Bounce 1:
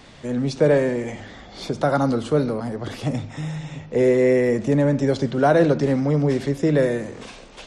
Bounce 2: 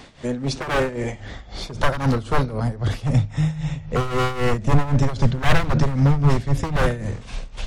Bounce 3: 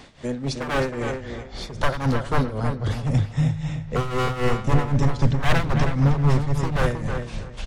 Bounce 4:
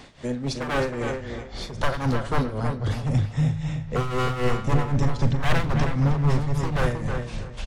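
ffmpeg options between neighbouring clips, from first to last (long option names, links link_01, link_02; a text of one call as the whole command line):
ffmpeg -i in.wav -af "aeval=exprs='0.141*(abs(mod(val(0)/0.141+3,4)-2)-1)':channel_layout=same,asubboost=boost=10:cutoff=100,tremolo=f=3.8:d=0.78,volume=4.5dB" out.wav
ffmpeg -i in.wav -filter_complex "[0:a]asplit=2[link_01][link_02];[link_02]adelay=316,lowpass=frequency=3300:poles=1,volume=-6.5dB,asplit=2[link_03][link_04];[link_04]adelay=316,lowpass=frequency=3300:poles=1,volume=0.22,asplit=2[link_05][link_06];[link_06]adelay=316,lowpass=frequency=3300:poles=1,volume=0.22[link_07];[link_01][link_03][link_05][link_07]amix=inputs=4:normalize=0,volume=-2.5dB" out.wav
ffmpeg -i in.wav -filter_complex "[0:a]asplit=2[link_01][link_02];[link_02]asoftclip=type=tanh:threshold=-22.5dB,volume=-7dB[link_03];[link_01][link_03]amix=inputs=2:normalize=0,asplit=2[link_04][link_05];[link_05]adelay=40,volume=-14dB[link_06];[link_04][link_06]amix=inputs=2:normalize=0,volume=-3.5dB" out.wav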